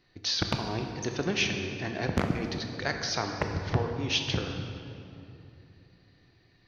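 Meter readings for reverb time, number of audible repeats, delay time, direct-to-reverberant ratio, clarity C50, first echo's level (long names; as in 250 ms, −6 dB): 2.9 s, no echo audible, no echo audible, 4.0 dB, 5.0 dB, no echo audible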